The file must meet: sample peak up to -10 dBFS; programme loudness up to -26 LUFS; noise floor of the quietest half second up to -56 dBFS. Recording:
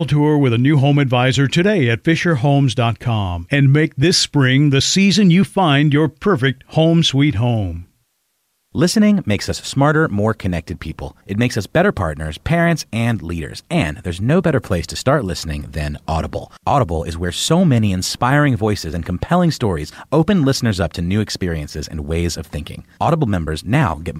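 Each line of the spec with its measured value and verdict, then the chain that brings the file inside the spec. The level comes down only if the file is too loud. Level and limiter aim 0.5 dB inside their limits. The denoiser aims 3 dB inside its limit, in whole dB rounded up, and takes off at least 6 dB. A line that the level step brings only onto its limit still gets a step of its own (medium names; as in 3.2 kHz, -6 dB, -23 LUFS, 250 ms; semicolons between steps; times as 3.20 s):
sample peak -4.5 dBFS: fail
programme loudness -16.5 LUFS: fail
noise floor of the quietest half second -67 dBFS: pass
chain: trim -10 dB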